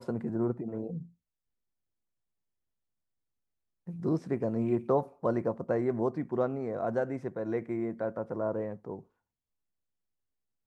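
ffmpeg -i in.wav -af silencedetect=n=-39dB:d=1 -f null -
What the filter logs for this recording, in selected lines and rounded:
silence_start: 1.02
silence_end: 3.88 | silence_duration: 2.86
silence_start: 8.99
silence_end: 10.66 | silence_duration: 1.67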